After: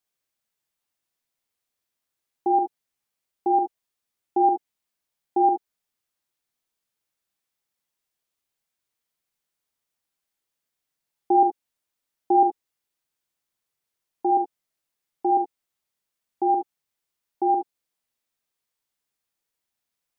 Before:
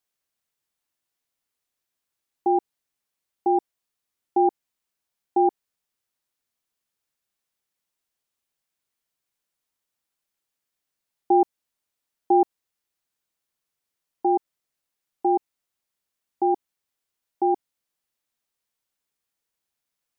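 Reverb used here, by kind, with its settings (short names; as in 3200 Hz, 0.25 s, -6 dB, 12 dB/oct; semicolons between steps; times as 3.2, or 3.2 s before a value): non-linear reverb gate 90 ms rising, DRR 4.5 dB; gain -1.5 dB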